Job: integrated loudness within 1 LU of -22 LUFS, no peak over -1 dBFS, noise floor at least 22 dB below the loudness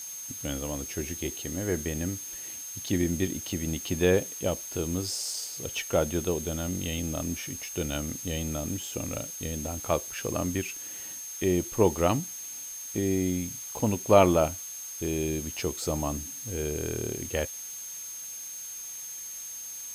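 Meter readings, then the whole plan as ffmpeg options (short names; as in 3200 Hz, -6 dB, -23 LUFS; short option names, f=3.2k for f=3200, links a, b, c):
steady tone 6400 Hz; tone level -38 dBFS; noise floor -40 dBFS; noise floor target -52 dBFS; loudness -30.0 LUFS; peak -6.5 dBFS; loudness target -22.0 LUFS
-> -af "bandreject=f=6.4k:w=30"
-af "afftdn=nr=12:nf=-40"
-af "volume=8dB,alimiter=limit=-1dB:level=0:latency=1"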